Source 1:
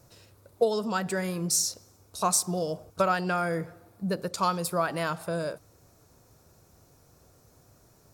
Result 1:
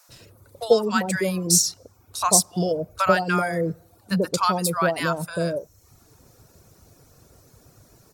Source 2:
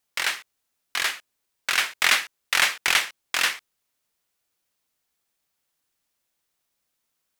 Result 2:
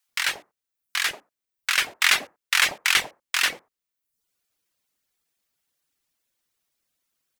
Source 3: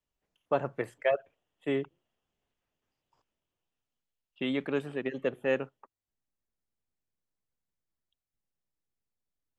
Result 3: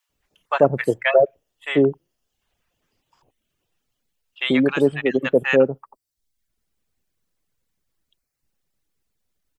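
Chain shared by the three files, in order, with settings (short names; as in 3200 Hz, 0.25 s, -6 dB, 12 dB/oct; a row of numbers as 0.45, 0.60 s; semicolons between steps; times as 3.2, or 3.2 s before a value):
bands offset in time highs, lows 90 ms, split 850 Hz; reverb removal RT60 0.7 s; normalise peaks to -1.5 dBFS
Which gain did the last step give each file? +8.0, +1.5, +15.0 dB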